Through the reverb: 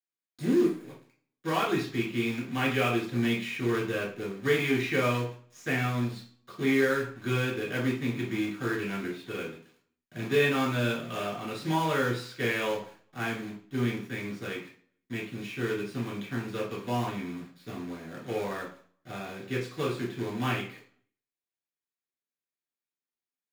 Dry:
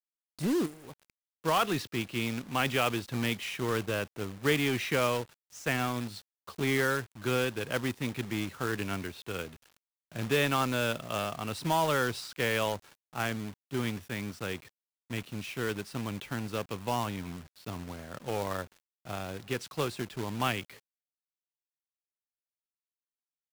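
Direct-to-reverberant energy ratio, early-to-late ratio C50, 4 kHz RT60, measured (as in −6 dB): −5.5 dB, 7.0 dB, 0.40 s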